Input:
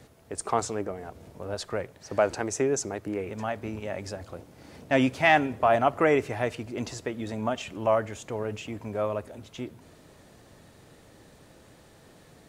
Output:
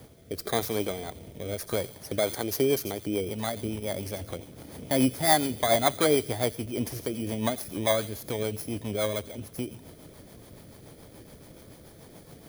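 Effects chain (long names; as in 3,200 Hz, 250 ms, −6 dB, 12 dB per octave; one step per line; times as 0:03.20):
samples in bit-reversed order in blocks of 16 samples
in parallel at +1.5 dB: downward compressor, threshold −36 dBFS, peak gain reduction 19.5 dB
on the sum: delay with a high-pass on its return 87 ms, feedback 45%, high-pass 3,500 Hz, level −11 dB
rotating-speaker cabinet horn 0.9 Hz, later 7 Hz, at 0:01.87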